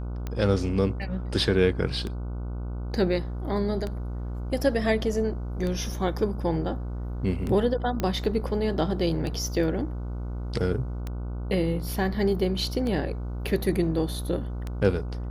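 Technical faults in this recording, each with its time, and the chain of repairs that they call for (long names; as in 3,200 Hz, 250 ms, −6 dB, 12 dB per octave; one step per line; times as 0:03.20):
mains buzz 60 Hz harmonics 25 −32 dBFS
scratch tick 33 1/3 rpm −19 dBFS
0:08.00: click −14 dBFS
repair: click removal
hum removal 60 Hz, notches 25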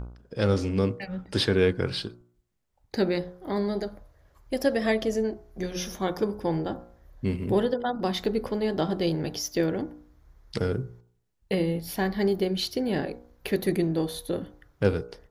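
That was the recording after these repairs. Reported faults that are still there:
none of them is left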